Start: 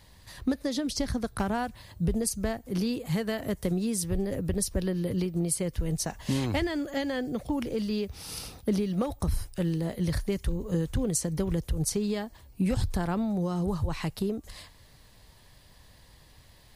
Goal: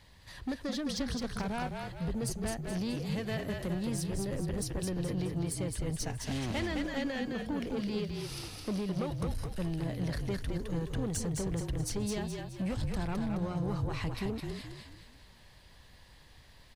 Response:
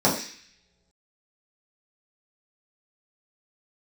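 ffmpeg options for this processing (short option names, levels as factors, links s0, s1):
-filter_complex "[0:a]lowpass=f=2800:p=1,acrossover=split=1500[s0][s1];[s1]acontrast=41[s2];[s0][s2]amix=inputs=2:normalize=0,asoftclip=type=tanh:threshold=0.0501,asplit=6[s3][s4][s5][s6][s7][s8];[s4]adelay=212,afreqshift=-38,volume=0.631[s9];[s5]adelay=424,afreqshift=-76,volume=0.272[s10];[s6]adelay=636,afreqshift=-114,volume=0.116[s11];[s7]adelay=848,afreqshift=-152,volume=0.0501[s12];[s8]adelay=1060,afreqshift=-190,volume=0.0216[s13];[s3][s9][s10][s11][s12][s13]amix=inputs=6:normalize=0,volume=0.668"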